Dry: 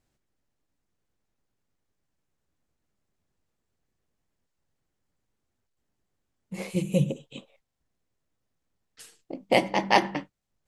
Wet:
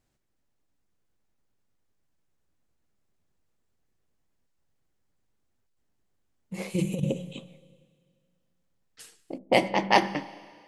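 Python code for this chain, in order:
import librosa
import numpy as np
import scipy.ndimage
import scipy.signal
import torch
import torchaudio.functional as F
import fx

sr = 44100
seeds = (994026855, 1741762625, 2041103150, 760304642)

y = fx.rev_schroeder(x, sr, rt60_s=2.0, comb_ms=30, drr_db=16.5)
y = fx.over_compress(y, sr, threshold_db=-25.0, ratio=-0.5, at=(6.74, 7.31), fade=0.02)
y = fx.env_lowpass(y, sr, base_hz=390.0, full_db=-18.0, at=(9.37, 9.95), fade=0.02)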